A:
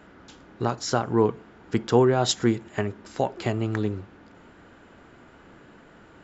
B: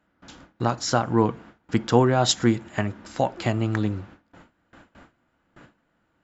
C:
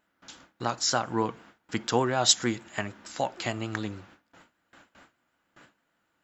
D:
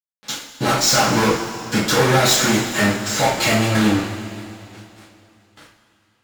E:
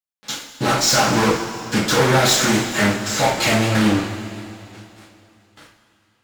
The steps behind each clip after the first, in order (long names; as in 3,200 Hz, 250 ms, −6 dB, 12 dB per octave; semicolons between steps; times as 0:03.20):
parametric band 410 Hz −11.5 dB 0.22 octaves; noise gate with hold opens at −40 dBFS; level +3 dB
spectral tilt +2.5 dB per octave; pitch vibrato 6.6 Hz 39 cents; level −4 dB
fuzz pedal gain 39 dB, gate −49 dBFS; coupled-rooms reverb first 0.4 s, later 2.9 s, from −15 dB, DRR −9 dB; level −9.5 dB
highs frequency-modulated by the lows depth 0.23 ms